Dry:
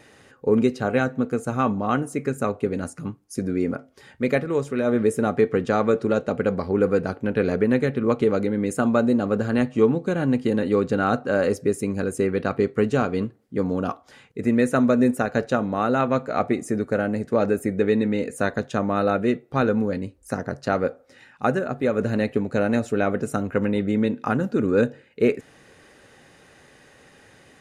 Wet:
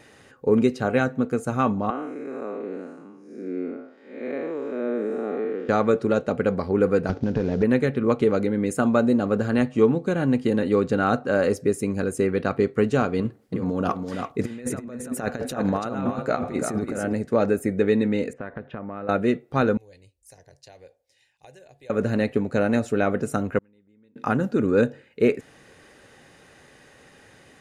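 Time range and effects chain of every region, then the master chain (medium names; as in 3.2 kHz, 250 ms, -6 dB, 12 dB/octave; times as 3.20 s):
1.90–5.69 s: spectral blur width 229 ms + high-pass 260 Hz 24 dB/octave + tape spacing loss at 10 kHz 24 dB
7.09–7.63 s: CVSD coder 32 kbps + bass shelf 400 Hz +11.5 dB + compression 12:1, threshold -18 dBFS
13.19–17.13 s: compressor with a negative ratio -26 dBFS, ratio -0.5 + delay 334 ms -6 dB
18.33–19.09 s: low-pass 2.5 kHz 24 dB/octave + compression 4:1, threshold -31 dBFS
19.77–21.90 s: amplifier tone stack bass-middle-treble 5-5-5 + compression 2:1, threshold -42 dBFS + static phaser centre 540 Hz, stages 4
23.58–24.16 s: peaking EQ 660 Hz -8.5 dB 0.31 oct + inverted gate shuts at -18 dBFS, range -37 dB
whole clip: none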